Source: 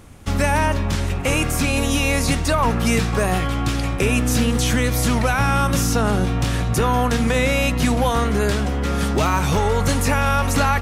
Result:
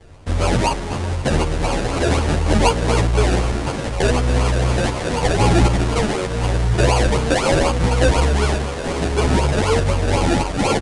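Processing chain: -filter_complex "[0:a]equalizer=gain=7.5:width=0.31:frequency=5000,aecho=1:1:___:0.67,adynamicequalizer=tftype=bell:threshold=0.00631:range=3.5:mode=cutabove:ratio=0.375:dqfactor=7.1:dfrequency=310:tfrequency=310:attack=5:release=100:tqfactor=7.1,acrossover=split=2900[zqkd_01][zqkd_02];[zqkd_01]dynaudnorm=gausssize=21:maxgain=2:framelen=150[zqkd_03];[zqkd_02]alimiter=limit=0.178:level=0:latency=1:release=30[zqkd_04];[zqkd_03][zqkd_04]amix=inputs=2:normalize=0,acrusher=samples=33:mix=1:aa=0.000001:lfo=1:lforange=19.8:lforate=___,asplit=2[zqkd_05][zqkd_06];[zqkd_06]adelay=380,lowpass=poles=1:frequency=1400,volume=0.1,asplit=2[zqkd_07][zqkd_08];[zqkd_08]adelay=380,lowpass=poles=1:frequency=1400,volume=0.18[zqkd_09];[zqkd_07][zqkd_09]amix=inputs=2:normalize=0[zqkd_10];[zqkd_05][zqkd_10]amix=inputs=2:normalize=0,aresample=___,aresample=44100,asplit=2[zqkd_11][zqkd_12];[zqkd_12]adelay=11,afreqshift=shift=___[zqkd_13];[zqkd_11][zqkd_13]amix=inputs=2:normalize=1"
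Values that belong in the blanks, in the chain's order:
2.2, 4, 22050, 0.83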